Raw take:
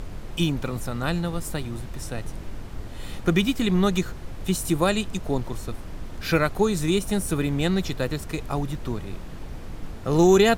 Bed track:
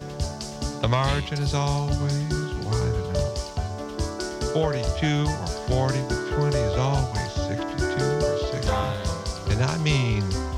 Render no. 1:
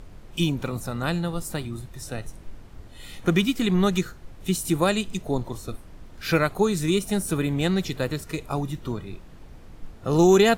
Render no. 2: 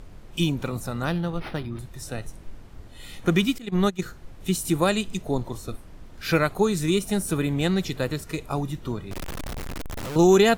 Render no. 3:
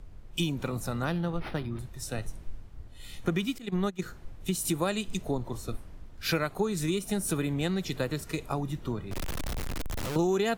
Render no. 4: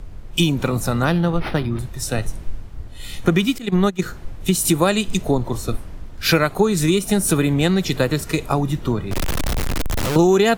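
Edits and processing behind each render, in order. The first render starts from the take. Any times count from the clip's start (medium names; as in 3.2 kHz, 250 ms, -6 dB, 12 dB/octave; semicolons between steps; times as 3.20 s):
noise print and reduce 9 dB
1.05–1.79 s: decimation joined by straight lines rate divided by 6×; 3.58–4.02 s: gate -21 dBFS, range -19 dB; 9.11–10.16 s: one-bit comparator
compression 5:1, threshold -26 dBFS, peak gain reduction 12 dB; three bands expanded up and down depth 40%
trim +12 dB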